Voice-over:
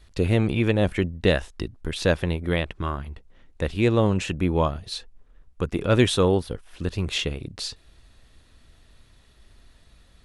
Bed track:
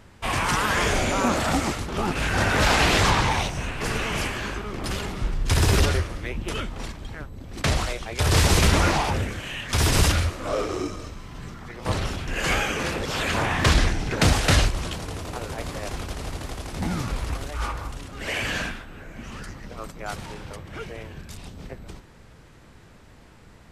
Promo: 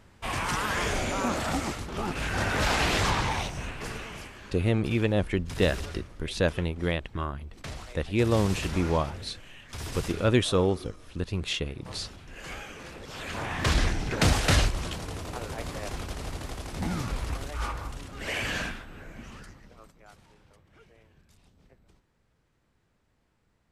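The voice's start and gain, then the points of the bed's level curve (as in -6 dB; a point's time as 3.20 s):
4.35 s, -4.0 dB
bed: 3.69 s -6 dB
4.29 s -16.5 dB
12.88 s -16.5 dB
13.90 s -3.5 dB
19.10 s -3.5 dB
20.14 s -21.5 dB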